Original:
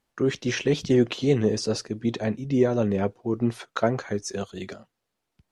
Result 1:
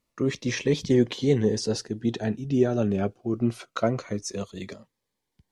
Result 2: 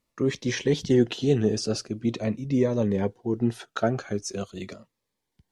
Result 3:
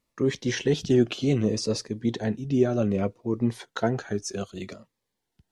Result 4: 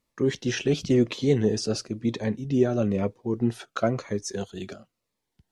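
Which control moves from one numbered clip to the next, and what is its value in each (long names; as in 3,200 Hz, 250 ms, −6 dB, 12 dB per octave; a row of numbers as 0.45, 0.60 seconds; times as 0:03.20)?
phaser whose notches keep moving one way, speed: 0.24, 0.43, 0.64, 1 Hertz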